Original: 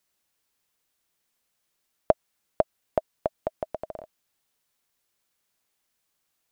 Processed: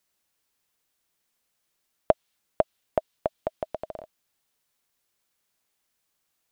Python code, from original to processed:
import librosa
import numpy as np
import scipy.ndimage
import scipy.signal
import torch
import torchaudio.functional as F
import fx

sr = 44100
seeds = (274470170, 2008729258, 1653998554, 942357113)

y = fx.dynamic_eq(x, sr, hz=3400.0, q=1.3, threshold_db=-58.0, ratio=4.0, max_db=6)